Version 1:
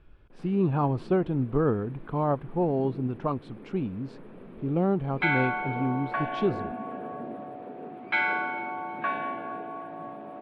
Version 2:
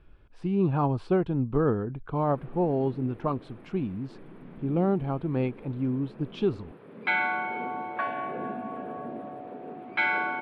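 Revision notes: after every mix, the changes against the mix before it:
background: entry +1.85 s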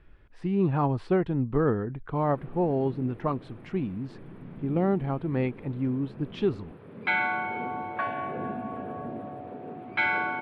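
speech: add peaking EQ 1.9 kHz +11.5 dB 0.25 oct; background: remove high-pass 190 Hz 12 dB/octave

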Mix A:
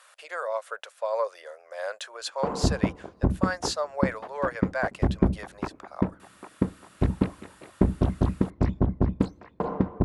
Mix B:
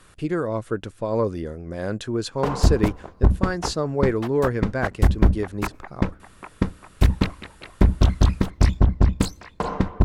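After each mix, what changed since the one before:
speech: remove elliptic high-pass 560 Hz, stop band 50 dB; background: remove band-pass filter 330 Hz, Q 0.59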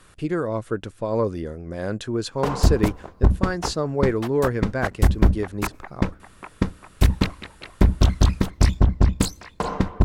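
background: add treble shelf 4.2 kHz +6.5 dB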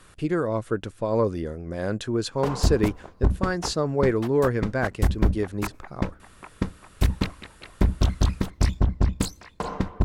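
background -4.5 dB

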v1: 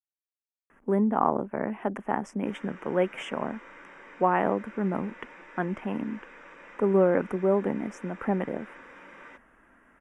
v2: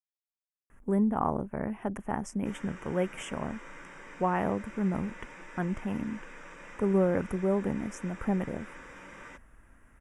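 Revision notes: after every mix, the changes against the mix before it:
speech -5.5 dB; master: remove three-band isolator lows -19 dB, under 200 Hz, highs -14 dB, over 4 kHz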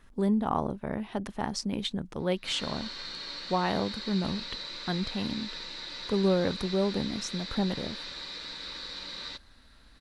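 speech: entry -0.70 s; master: remove Butterworth band-stop 4.2 kHz, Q 0.82

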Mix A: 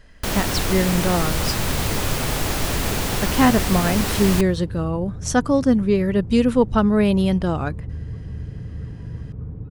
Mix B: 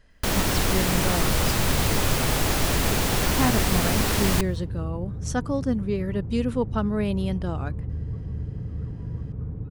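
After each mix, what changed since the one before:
speech -8.5 dB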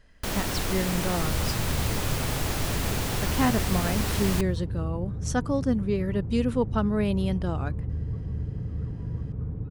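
first sound -6.0 dB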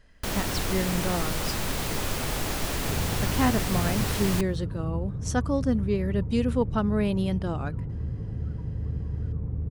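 second sound: entry +1.65 s

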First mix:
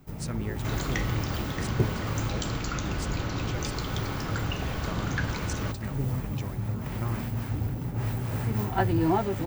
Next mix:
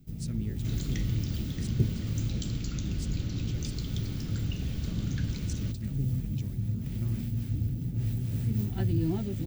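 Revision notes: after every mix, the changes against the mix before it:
master: add FFT filter 220 Hz 0 dB, 980 Hz -24 dB, 3.5 kHz -5 dB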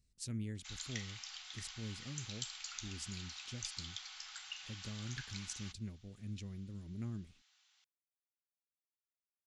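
first sound: muted; second sound: add steep high-pass 740 Hz 96 dB/octave; master: add bass shelf 460 Hz -6.5 dB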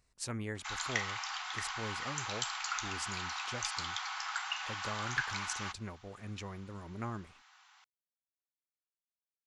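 master: remove FFT filter 220 Hz 0 dB, 980 Hz -24 dB, 3.5 kHz -5 dB

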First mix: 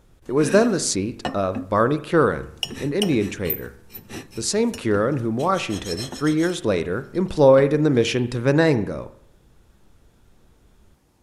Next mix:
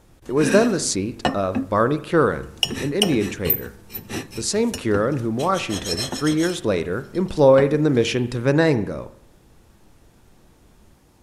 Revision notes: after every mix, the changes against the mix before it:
background +6.0 dB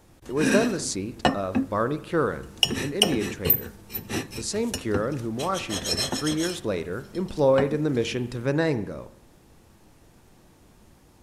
speech -6.5 dB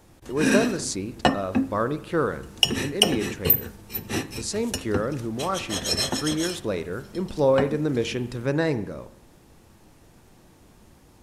background: send on

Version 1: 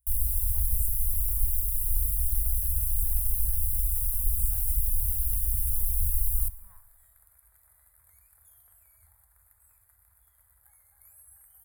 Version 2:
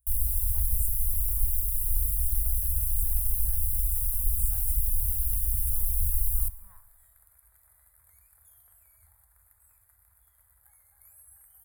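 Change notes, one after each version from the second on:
speech: send on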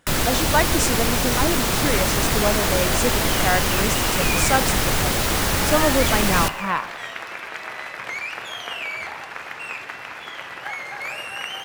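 master: remove inverse Chebyshev band-stop 140–6200 Hz, stop band 40 dB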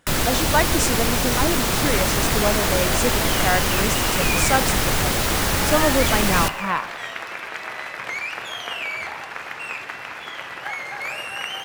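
second sound: send on

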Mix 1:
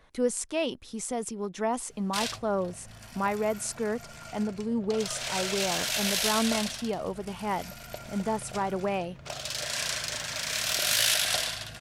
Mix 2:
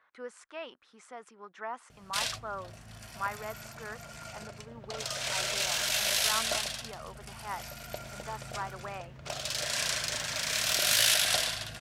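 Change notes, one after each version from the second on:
speech: add band-pass filter 1.4 kHz, Q 2.3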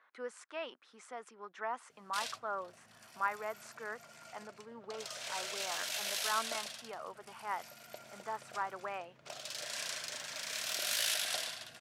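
background -9.0 dB; master: add high-pass 230 Hz 12 dB/octave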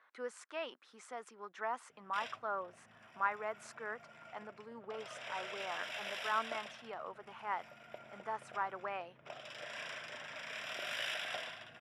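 background: add Savitzky-Golay filter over 25 samples

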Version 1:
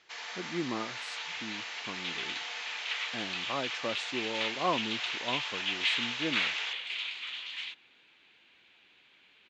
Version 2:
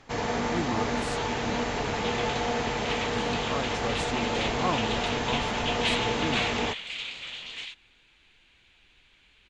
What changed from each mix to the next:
first sound: remove Bessel high-pass 2.7 kHz, order 2; master: remove band-pass 220–4800 Hz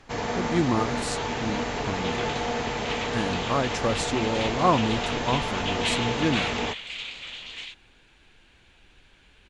speech +8.5 dB

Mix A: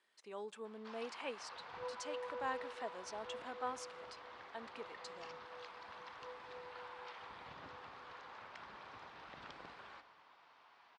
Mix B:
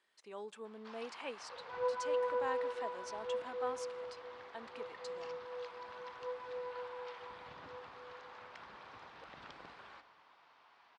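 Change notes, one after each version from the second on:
second sound +11.0 dB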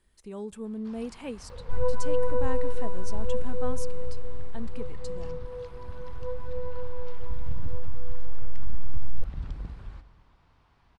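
first sound -4.0 dB; master: remove band-pass 660–4900 Hz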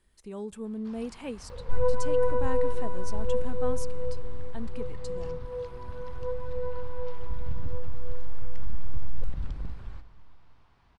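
second sound: send on

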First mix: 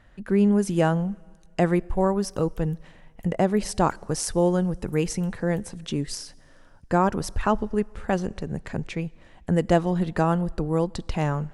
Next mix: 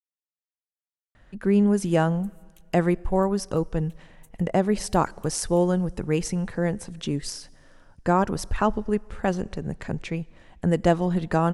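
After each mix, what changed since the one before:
speech: entry +1.15 s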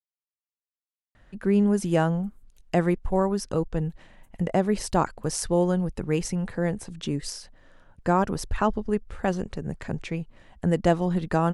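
background -11.0 dB; reverb: off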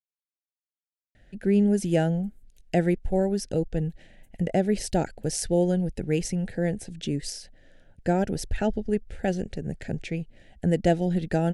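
master: add Butterworth band-stop 1.1 kHz, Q 1.3

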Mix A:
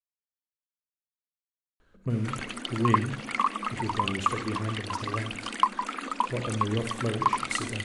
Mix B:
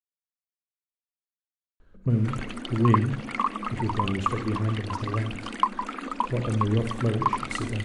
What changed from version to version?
master: add tilt EQ -2 dB/octave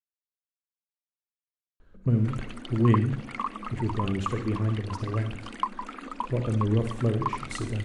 background -5.5 dB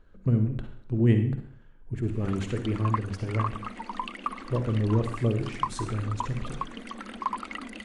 speech: entry -1.80 s

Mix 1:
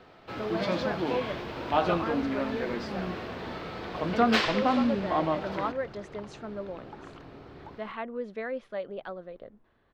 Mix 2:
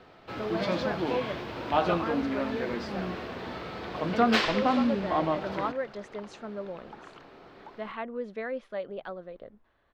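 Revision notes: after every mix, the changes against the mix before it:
second sound: add frequency weighting A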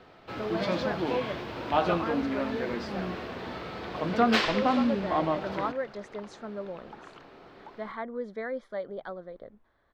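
speech: add Butterworth band-stop 2.7 kHz, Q 2.7

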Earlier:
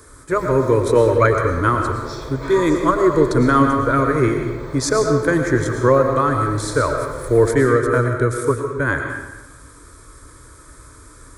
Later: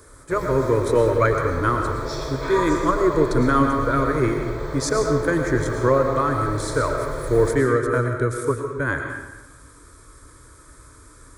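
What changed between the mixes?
speech -4.0 dB; background: send +11.0 dB

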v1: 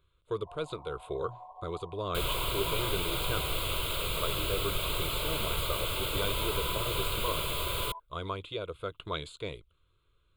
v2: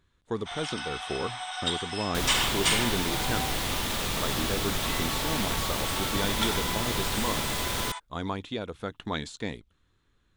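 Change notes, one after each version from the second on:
first sound: remove brick-wall FIR low-pass 1.1 kHz; master: remove static phaser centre 1.2 kHz, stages 8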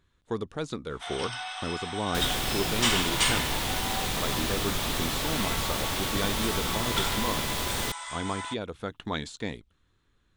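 first sound: entry +0.55 s

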